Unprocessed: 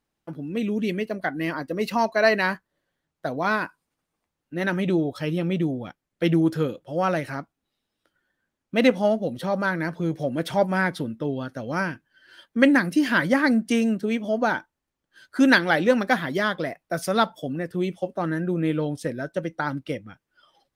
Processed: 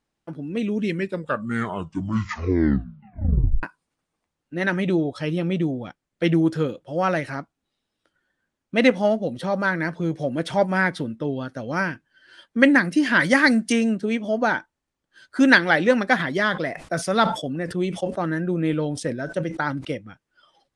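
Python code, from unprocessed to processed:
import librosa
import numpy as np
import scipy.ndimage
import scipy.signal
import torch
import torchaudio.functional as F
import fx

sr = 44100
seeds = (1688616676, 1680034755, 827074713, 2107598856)

y = fx.high_shelf(x, sr, hz=2700.0, db=10.5, at=(13.19, 13.71), fade=0.02)
y = fx.sustainer(y, sr, db_per_s=100.0, at=(16.19, 19.91), fade=0.02)
y = fx.edit(y, sr, fx.tape_stop(start_s=0.74, length_s=2.89), tone=tone)
y = scipy.signal.sosfilt(scipy.signal.butter(6, 10000.0, 'lowpass', fs=sr, output='sos'), y)
y = fx.dynamic_eq(y, sr, hz=1900.0, q=2.4, threshold_db=-36.0, ratio=4.0, max_db=4)
y = F.gain(torch.from_numpy(y), 1.0).numpy()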